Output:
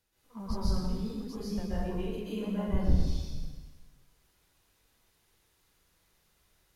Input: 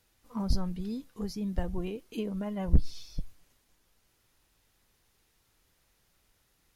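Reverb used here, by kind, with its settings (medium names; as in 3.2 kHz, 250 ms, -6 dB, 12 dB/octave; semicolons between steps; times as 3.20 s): plate-style reverb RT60 1.3 s, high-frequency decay 0.95×, pre-delay 115 ms, DRR -9.5 dB; trim -9 dB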